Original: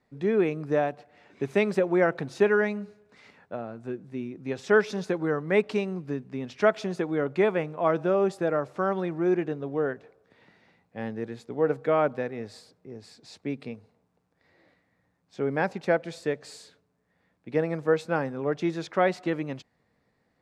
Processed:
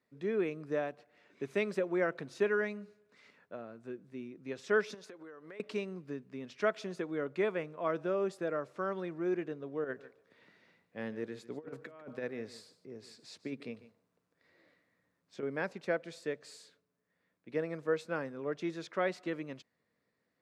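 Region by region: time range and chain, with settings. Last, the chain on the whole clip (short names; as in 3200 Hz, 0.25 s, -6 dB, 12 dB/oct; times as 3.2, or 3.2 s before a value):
4.94–5.6 bell 150 Hz -11.5 dB 1.4 oct + compressor 16:1, threshold -37 dBFS
9.84–15.43 negative-ratio compressor -30 dBFS, ratio -0.5 + echo 0.147 s -16 dB
whole clip: HPF 240 Hz 6 dB/oct; bell 800 Hz -9 dB 0.35 oct; gain -7 dB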